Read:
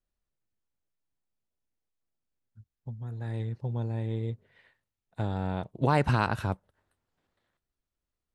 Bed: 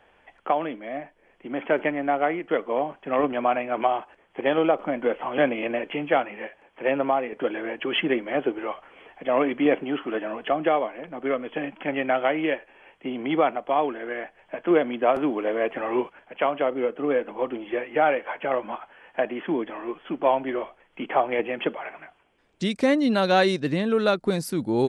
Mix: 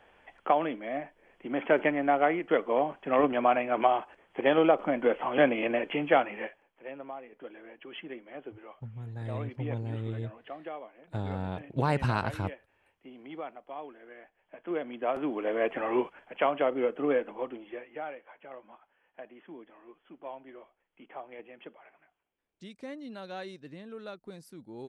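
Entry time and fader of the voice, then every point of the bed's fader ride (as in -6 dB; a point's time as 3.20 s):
5.95 s, -3.0 dB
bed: 6.45 s -1.5 dB
6.73 s -18.5 dB
14.27 s -18.5 dB
15.65 s -3 dB
17.11 s -3 dB
18.23 s -21 dB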